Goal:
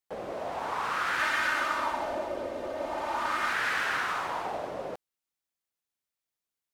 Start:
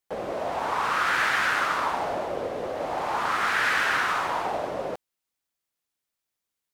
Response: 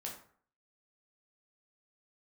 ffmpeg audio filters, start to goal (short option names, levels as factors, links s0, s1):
-filter_complex "[0:a]asettb=1/sr,asplit=3[s0][s1][s2];[s0]atrim=end=1.194[s3];[s1]atrim=start=1.19:end=3.53,asetpts=PTS-STARTPTS,afade=t=in:d=0.004:c=qsin,afade=t=out:st=2.336:d=0.004:c=qsin,aecho=1:1:3.3:0.64,atrim=end_sample=103194[s4];[s2]atrim=start=3.526[s5];[s3][s4]acrossfade=d=0.004:c1=hsin:c2=qsin[s6];[s6][s5]acrossfade=d=0.004:c1=qsin:c2=hsin,volume=0.531"